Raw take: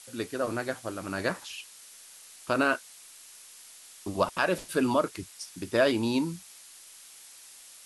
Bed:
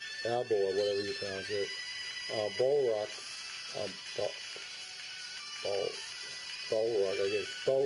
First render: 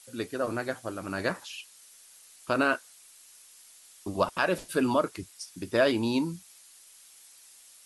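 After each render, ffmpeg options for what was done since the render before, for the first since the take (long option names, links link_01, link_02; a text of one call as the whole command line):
ffmpeg -i in.wav -af "afftdn=noise_reduction=6:noise_floor=-51" out.wav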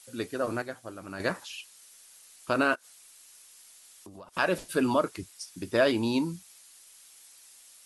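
ffmpeg -i in.wav -filter_complex "[0:a]asplit=3[link_01][link_02][link_03];[link_01]afade=type=out:start_time=2.74:duration=0.02[link_04];[link_02]acompressor=threshold=-45dB:ratio=6:attack=3.2:release=140:knee=1:detection=peak,afade=type=in:start_time=2.74:duration=0.02,afade=type=out:start_time=4.33:duration=0.02[link_05];[link_03]afade=type=in:start_time=4.33:duration=0.02[link_06];[link_04][link_05][link_06]amix=inputs=3:normalize=0,asplit=3[link_07][link_08][link_09];[link_07]atrim=end=0.622[link_10];[link_08]atrim=start=0.618:end=1.202,asetpts=PTS-STARTPTS,volume=-6dB[link_11];[link_09]atrim=start=1.198[link_12];[link_10][link_11]acrossfade=duration=0.004:curve1=hsin:curve2=hsin[link_13];[link_13][link_12]acrossfade=duration=0.004:curve1=hsin:curve2=hsin" out.wav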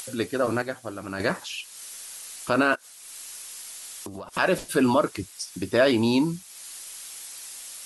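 ffmpeg -i in.wav -filter_complex "[0:a]asplit=2[link_01][link_02];[link_02]alimiter=limit=-20.5dB:level=0:latency=1:release=28,volume=1dB[link_03];[link_01][link_03]amix=inputs=2:normalize=0,acompressor=mode=upward:threshold=-31dB:ratio=2.5" out.wav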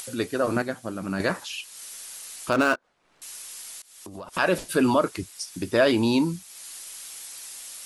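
ffmpeg -i in.wav -filter_complex "[0:a]asettb=1/sr,asplit=3[link_01][link_02][link_03];[link_01]atrim=end=0.564[link_04];[link_02]atrim=start=0.56:end=1.21,asetpts=PTS-STARTPTS,afade=type=in:duration=0.004:curve=qsin,afade=type=out:start_time=0.646:duration=0.004:curve=qsin,equalizer=frequency=200:width_type=o:width=0.77:gain=10[link_05];[link_03]atrim=start=1.206[link_06];[link_04][link_05]acrossfade=duration=0.004:curve1=hsin:curve2=qsin[link_07];[link_07][link_06]acrossfade=duration=0.004:curve1=qsin:curve2=hsin,asettb=1/sr,asplit=3[link_08][link_09][link_10];[link_08]atrim=end=2.524[link_11];[link_09]atrim=start=2.52:end=3.22,asetpts=PTS-STARTPTS,afade=type=in:duration=0.004:curve=qsin,afade=type=out:start_time=0.696:duration=0.004:curve=qsin,adynamicsmooth=sensitivity=6:basefreq=870[link_12];[link_10]atrim=start=3.216[link_13];[link_11][link_12]acrossfade=duration=0.004:curve1=hsin:curve2=qsin[link_14];[link_14][link_13]acrossfade=duration=0.004:curve1=qsin:curve2=hsin,asplit=2[link_15][link_16];[link_15]atrim=end=3.82,asetpts=PTS-STARTPTS,afade=type=out:start_time=3.816:duration=0.004:curve=hsin:silence=0.0630957[link_17];[link_16]atrim=start=3.82,asetpts=PTS-STARTPTS,afade=type=in:duration=0.42:silence=0.0630957[link_18];[link_17][link_18]concat=n=2:v=0:a=1" out.wav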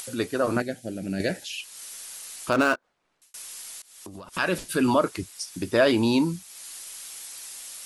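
ffmpeg -i in.wav -filter_complex "[0:a]asettb=1/sr,asplit=3[link_01][link_02][link_03];[link_01]atrim=end=0.604[link_04];[link_02]atrim=start=0.6:end=1.6,asetpts=PTS-STARTPTS,afade=type=in:duration=0.004:curve=qsin,afade=type=out:start_time=0.996:duration=0.004:curve=qsin,asuperstop=centerf=1100:order=4:qfactor=0.97[link_05];[link_03]atrim=start=1.596[link_06];[link_04][link_05]acrossfade=duration=0.004:curve1=hsin:curve2=qsin[link_07];[link_07][link_06]acrossfade=duration=0.004:curve1=qsin:curve2=hsin,asettb=1/sr,asplit=3[link_08][link_09][link_10];[link_08]atrim=end=4.114[link_11];[link_09]atrim=start=4.11:end=4.88,asetpts=PTS-STARTPTS,afade=type=in:duration=0.004:curve=qsin,afade=type=out:start_time=0.766:duration=0.004:curve=qsin,equalizer=frequency=660:width=1:gain=-6.5[link_12];[link_10]atrim=start=4.876[link_13];[link_11][link_12]acrossfade=duration=0.004:curve1=hsin:curve2=qsin[link_14];[link_14][link_13]acrossfade=duration=0.004:curve1=qsin:curve2=hsin,asplit=2[link_15][link_16];[link_15]atrim=end=3.34,asetpts=PTS-STARTPTS,afade=type=out:start_time=2.66:duration=0.68[link_17];[link_16]atrim=start=3.34,asetpts=PTS-STARTPTS,afade=type=in:duration=0.004:curve=hsin[link_18];[link_17][link_18]concat=n=2:v=0:a=1" out.wav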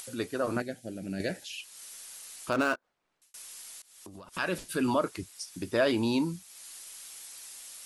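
ffmpeg -i in.wav -af "volume=-6dB" out.wav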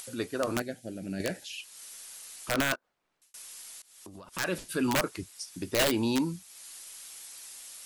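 ffmpeg -i in.wav -af "aeval=exprs='(mod(8.41*val(0)+1,2)-1)/8.41':channel_layout=same" out.wav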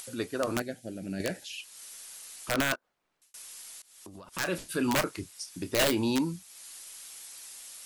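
ffmpeg -i in.wav -filter_complex "[0:a]asettb=1/sr,asplit=3[link_01][link_02][link_03];[link_01]atrim=end=4.294[link_04];[link_02]atrim=start=4.29:end=6.1,asetpts=PTS-STARTPTS,afade=type=in:duration=0.004:curve=qsin,afade=type=out:start_time=1.806:duration=0.004:curve=qsin,asplit=2[link_05][link_06];[link_06]adelay=29,volume=-12dB[link_07];[link_05][link_07]amix=inputs=2:normalize=0,atrim=end_sample=79821[link_08];[link_03]atrim=start=6.096[link_09];[link_04][link_08]acrossfade=duration=0.004:curve1=hsin:curve2=qsin[link_10];[link_10][link_09]acrossfade=duration=0.004:curve1=qsin:curve2=hsin" out.wav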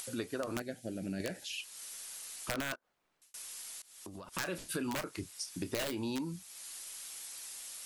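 ffmpeg -i in.wav -af "acompressor=threshold=-33dB:ratio=16" out.wav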